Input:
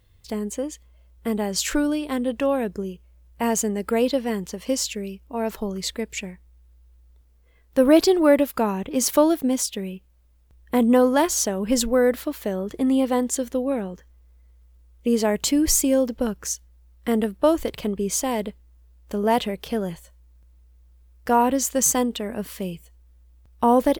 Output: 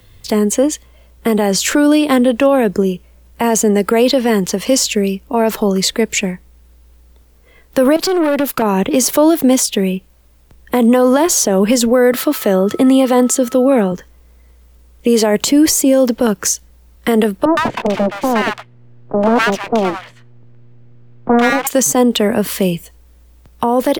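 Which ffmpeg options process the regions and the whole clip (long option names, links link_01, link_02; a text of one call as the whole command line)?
ffmpeg -i in.wav -filter_complex "[0:a]asettb=1/sr,asplit=3[link_01][link_02][link_03];[link_01]atrim=end=7.964[link_04];[link_02]atrim=start=7.96:end=8.62,asetpts=PTS-STARTPTS,afade=type=in:duration=0.004:curve=qsin,afade=type=out:start_time=0.656:duration=0.004:curve=qsin,agate=range=-33dB:threshold=-43dB:ratio=3:release=100:detection=peak,acompressor=threshold=-20dB:ratio=6:attack=3.2:release=140:knee=1:detection=peak,aeval=exprs='(tanh(22.4*val(0)+0.6)-tanh(0.6))/22.4':channel_layout=same[link_05];[link_03]atrim=start=8.616[link_06];[link_04][link_05]acrossfade=duration=0.004:curve1=hsin:curve2=qsin[link_07];[link_07][link_06]acrossfade=duration=0.004:curve1=qsin:curve2=hsin,asettb=1/sr,asplit=3[link_08][link_09][link_10];[link_08]atrim=end=12.124[link_11];[link_09]atrim=start=12.12:end=13.92,asetpts=PTS-STARTPTS,afade=type=in:duration=0.004:curve=qsin,afade=type=out:start_time=1.796:duration=0.004:curve=qsin,highpass=frequency=77:width=0.5412,highpass=frequency=77:width=1.3066,aeval=exprs='val(0)+0.00282*sin(2*PI*1300*n/s)':channel_layout=same[link_12];[link_10]atrim=start=13.916[link_13];[link_11][link_12]acrossfade=duration=0.004:curve1=hsin:curve2=qsin[link_14];[link_14][link_13]acrossfade=duration=0.004:curve1=qsin:curve2=hsin,asettb=1/sr,asplit=3[link_15][link_16][link_17];[link_15]atrim=end=17.454[link_18];[link_16]atrim=start=17.45:end=21.67,asetpts=PTS-STARTPTS,afade=type=in:duration=0.004:curve=qsin,afade=type=out:start_time=4.216:duration=0.004:curve=qsin,lowpass=2200,aeval=exprs='abs(val(0))':channel_layout=same,acrossover=split=990[link_19][link_20];[link_20]adelay=120[link_21];[link_19][link_21]amix=inputs=2:normalize=0,atrim=end_sample=186102[link_22];[link_17]atrim=start=21.666[link_23];[link_18][link_22]acrossfade=duration=0.004:curve1=hsin:curve2=qsin[link_24];[link_24][link_23]acrossfade=duration=0.004:curve1=qsin:curve2=hsin,equalizer=frequency=66:width_type=o:width=0.56:gain=-12,acrossover=split=88|290|780[link_25][link_26][link_27][link_28];[link_25]acompressor=threshold=-58dB:ratio=4[link_29];[link_26]acompressor=threshold=-32dB:ratio=4[link_30];[link_27]acompressor=threshold=-23dB:ratio=4[link_31];[link_28]acompressor=threshold=-29dB:ratio=4[link_32];[link_29][link_30][link_31][link_32]amix=inputs=4:normalize=0,alimiter=level_in=19.5dB:limit=-1dB:release=50:level=0:latency=1,volume=-3dB" out.wav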